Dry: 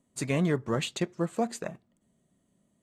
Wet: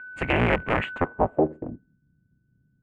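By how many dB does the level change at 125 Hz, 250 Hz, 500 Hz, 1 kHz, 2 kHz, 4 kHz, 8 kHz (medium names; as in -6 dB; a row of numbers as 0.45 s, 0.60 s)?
+2.0 dB, +2.0 dB, +6.0 dB, +10.5 dB, +11.5 dB, +0.5 dB, under -20 dB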